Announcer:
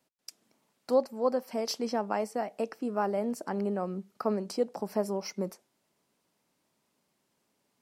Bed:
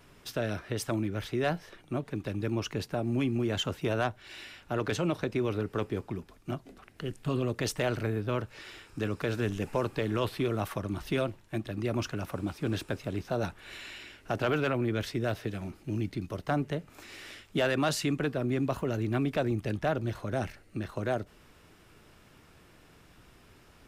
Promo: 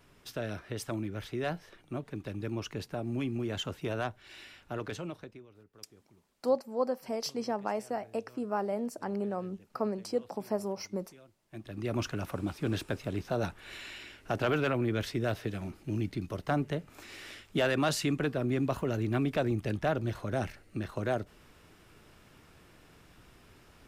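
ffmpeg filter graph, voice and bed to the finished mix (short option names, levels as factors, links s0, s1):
-filter_complex "[0:a]adelay=5550,volume=0.75[s0];[1:a]volume=12.6,afade=t=out:st=4.63:d=0.83:silence=0.0749894,afade=t=in:st=11.42:d=0.59:silence=0.0473151[s1];[s0][s1]amix=inputs=2:normalize=0"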